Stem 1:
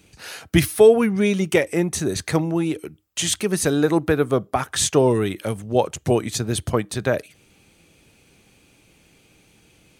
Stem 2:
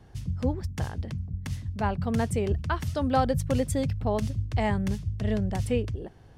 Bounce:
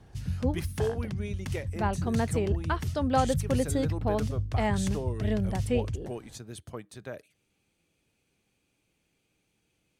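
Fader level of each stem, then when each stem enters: -19.0 dB, -1.0 dB; 0.00 s, 0.00 s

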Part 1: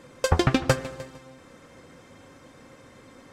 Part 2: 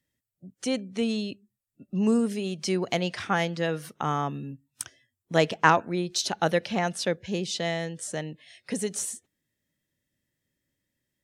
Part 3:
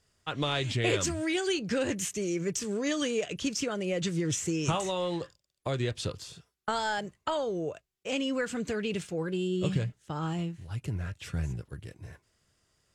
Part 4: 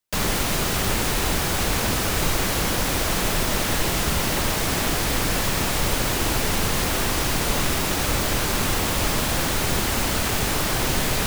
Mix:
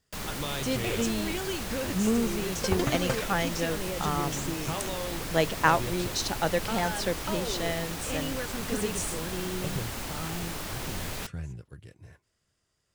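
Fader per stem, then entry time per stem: -9.0 dB, -3.0 dB, -5.0 dB, -13.0 dB; 2.40 s, 0.00 s, 0.00 s, 0.00 s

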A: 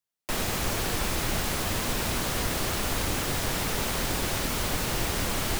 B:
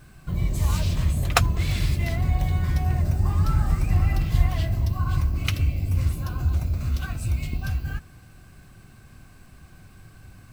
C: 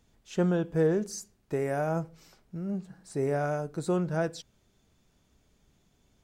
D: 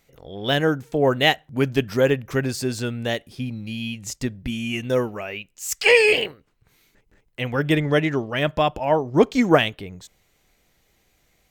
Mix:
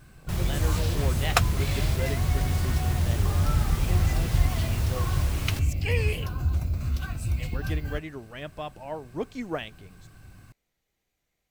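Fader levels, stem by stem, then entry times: -9.0 dB, -2.5 dB, -14.5 dB, -16.0 dB; 0.00 s, 0.00 s, 0.00 s, 0.00 s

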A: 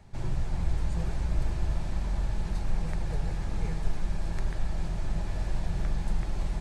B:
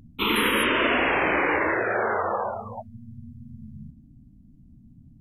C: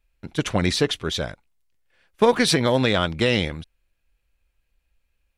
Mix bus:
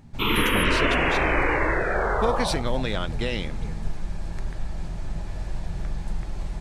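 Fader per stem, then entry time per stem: -0.5 dB, -0.5 dB, -8.5 dB; 0.00 s, 0.00 s, 0.00 s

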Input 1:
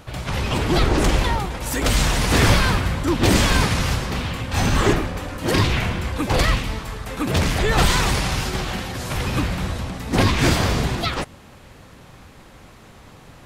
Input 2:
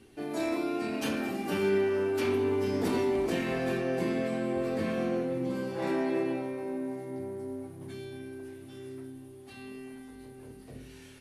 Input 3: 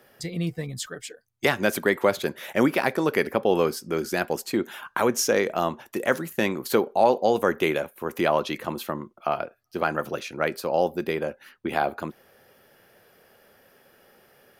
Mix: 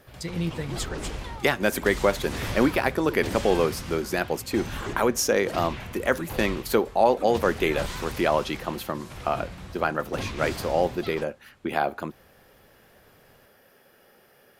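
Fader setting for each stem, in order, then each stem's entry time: -16.0 dB, mute, -0.5 dB; 0.00 s, mute, 0.00 s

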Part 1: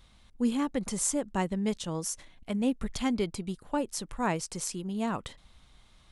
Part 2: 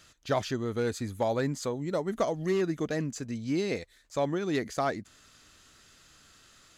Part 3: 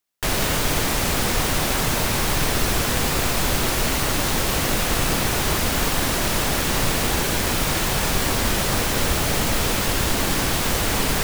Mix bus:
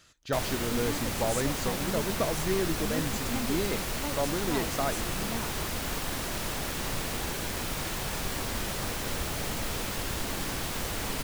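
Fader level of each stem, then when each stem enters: -8.0 dB, -2.0 dB, -11.5 dB; 0.30 s, 0.00 s, 0.10 s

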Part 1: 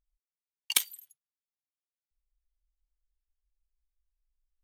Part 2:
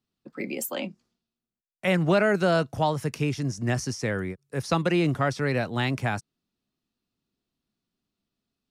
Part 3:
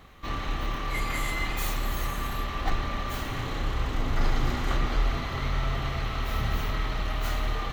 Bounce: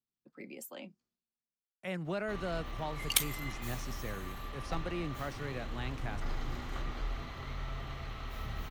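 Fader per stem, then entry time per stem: -2.5 dB, -15.0 dB, -12.0 dB; 2.40 s, 0.00 s, 2.05 s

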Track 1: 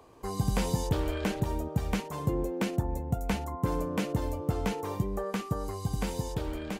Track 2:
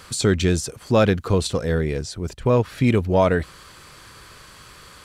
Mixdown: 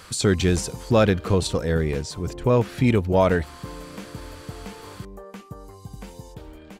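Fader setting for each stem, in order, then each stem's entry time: -7.5 dB, -1.0 dB; 0.00 s, 0.00 s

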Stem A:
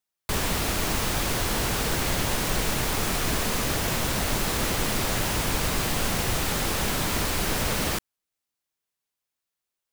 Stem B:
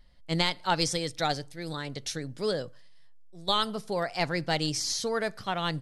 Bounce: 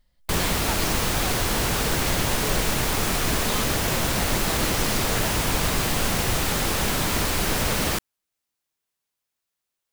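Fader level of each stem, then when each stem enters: +2.5 dB, -7.5 dB; 0.00 s, 0.00 s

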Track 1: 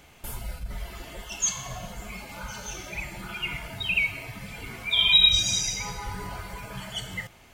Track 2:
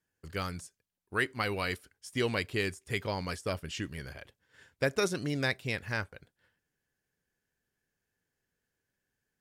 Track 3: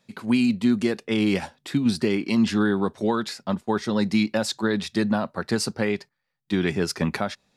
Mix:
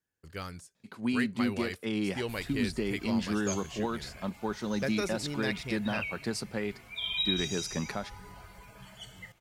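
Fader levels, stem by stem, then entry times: -13.0 dB, -4.5 dB, -9.5 dB; 2.05 s, 0.00 s, 0.75 s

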